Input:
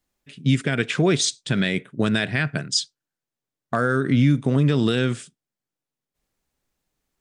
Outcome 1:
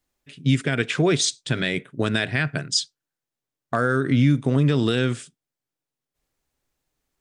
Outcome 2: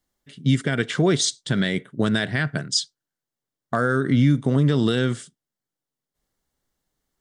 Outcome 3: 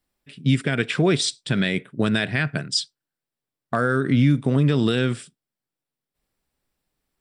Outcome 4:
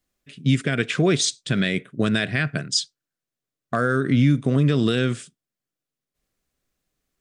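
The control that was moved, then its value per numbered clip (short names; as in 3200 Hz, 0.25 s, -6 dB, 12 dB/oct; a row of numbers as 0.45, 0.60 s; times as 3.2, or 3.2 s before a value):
notch, frequency: 200, 2500, 6500, 880 Hz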